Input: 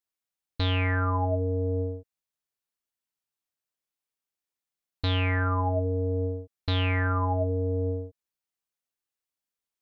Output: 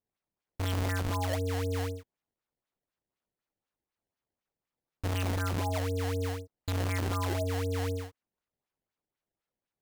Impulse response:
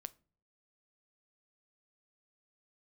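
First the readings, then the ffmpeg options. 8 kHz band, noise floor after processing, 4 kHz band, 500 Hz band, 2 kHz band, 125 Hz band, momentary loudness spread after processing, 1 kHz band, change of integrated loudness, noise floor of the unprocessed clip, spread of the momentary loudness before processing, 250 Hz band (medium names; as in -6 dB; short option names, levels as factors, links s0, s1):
no reading, under -85 dBFS, -5.5 dB, -5.0 dB, -6.5 dB, -5.0 dB, 7 LU, -5.5 dB, -5.0 dB, under -85 dBFS, 8 LU, -4.5 dB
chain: -filter_complex "[0:a]asplit=2[s0][s1];[s1]alimiter=level_in=1.06:limit=0.0631:level=0:latency=1,volume=0.944,volume=0.891[s2];[s0][s2]amix=inputs=2:normalize=0,acrusher=samples=21:mix=1:aa=0.000001:lfo=1:lforange=33.6:lforate=4,volume=0.376"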